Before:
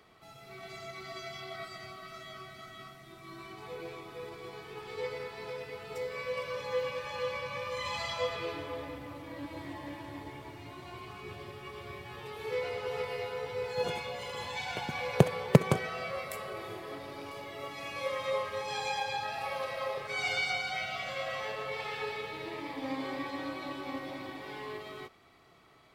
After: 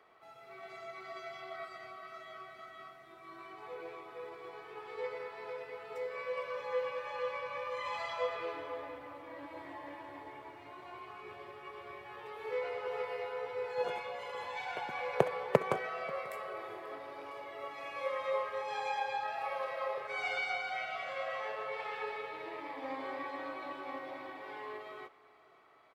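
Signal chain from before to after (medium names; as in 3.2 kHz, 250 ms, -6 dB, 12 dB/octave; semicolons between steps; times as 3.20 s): three-band isolator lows -17 dB, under 380 Hz, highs -13 dB, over 2.3 kHz; delay 538 ms -22 dB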